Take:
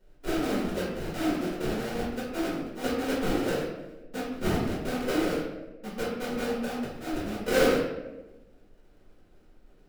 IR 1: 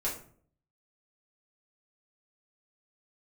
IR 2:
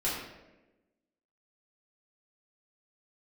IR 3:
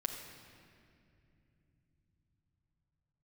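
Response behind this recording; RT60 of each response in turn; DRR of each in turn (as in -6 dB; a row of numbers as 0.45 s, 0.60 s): 2; 0.55 s, 1.1 s, 2.6 s; -6.5 dB, -8.5 dB, 1.5 dB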